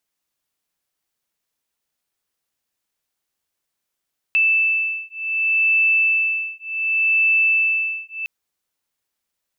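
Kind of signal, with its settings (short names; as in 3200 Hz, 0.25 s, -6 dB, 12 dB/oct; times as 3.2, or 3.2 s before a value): beating tones 2640 Hz, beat 0.67 Hz, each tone -19 dBFS 3.91 s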